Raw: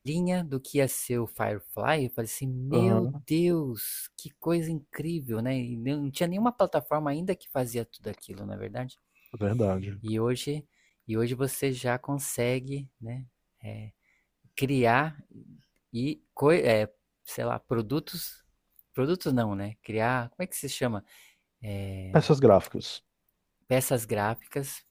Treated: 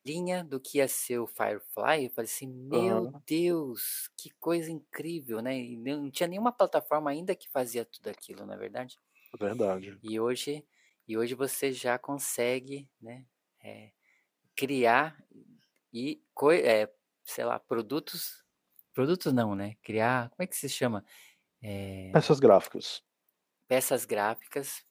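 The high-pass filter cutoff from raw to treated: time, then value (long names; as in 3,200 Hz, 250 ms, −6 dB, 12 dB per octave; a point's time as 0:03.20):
0:17.95 300 Hz
0:19.14 130 Hz
0:21.97 130 Hz
0:22.72 300 Hz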